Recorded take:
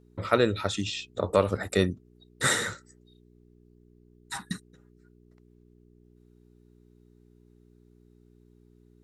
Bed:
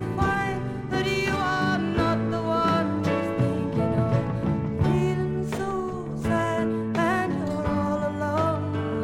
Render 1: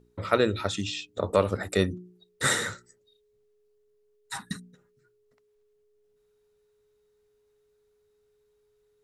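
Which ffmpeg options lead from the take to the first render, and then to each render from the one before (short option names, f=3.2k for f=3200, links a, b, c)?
-af "bandreject=f=60:t=h:w=4,bandreject=f=120:t=h:w=4,bandreject=f=180:t=h:w=4,bandreject=f=240:t=h:w=4,bandreject=f=300:t=h:w=4,bandreject=f=360:t=h:w=4"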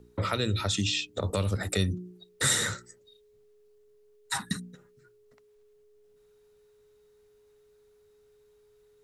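-filter_complex "[0:a]acrossover=split=170|3000[a][b][c];[b]acompressor=threshold=-35dB:ratio=6[d];[a][d][c]amix=inputs=3:normalize=0,asplit=2[e][f];[f]alimiter=level_in=1.5dB:limit=-24dB:level=0:latency=1:release=90,volume=-1.5dB,volume=1dB[g];[e][g]amix=inputs=2:normalize=0"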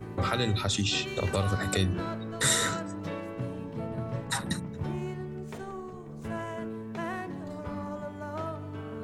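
-filter_complex "[1:a]volume=-11.5dB[a];[0:a][a]amix=inputs=2:normalize=0"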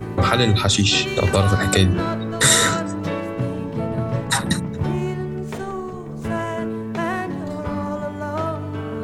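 -af "volume=11dB,alimiter=limit=-2dB:level=0:latency=1"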